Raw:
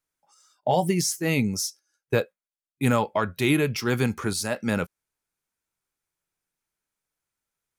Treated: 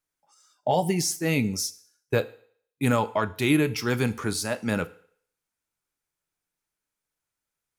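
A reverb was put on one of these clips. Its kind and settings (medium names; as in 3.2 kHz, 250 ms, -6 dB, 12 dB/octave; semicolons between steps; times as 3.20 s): FDN reverb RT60 0.57 s, low-frequency decay 0.75×, high-frequency decay 1×, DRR 13 dB; trim -1 dB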